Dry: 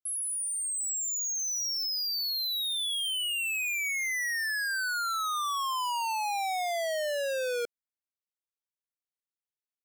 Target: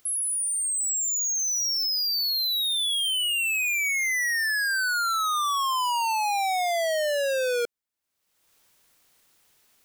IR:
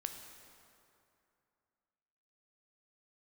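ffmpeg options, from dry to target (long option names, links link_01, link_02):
-af "acompressor=mode=upward:threshold=-47dB:ratio=2.5,volume=5.5dB"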